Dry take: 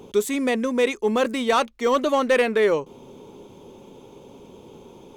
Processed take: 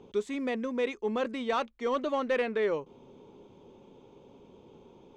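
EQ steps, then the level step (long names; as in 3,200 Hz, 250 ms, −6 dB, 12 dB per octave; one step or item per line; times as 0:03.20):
high-frequency loss of the air 120 metres
−9.0 dB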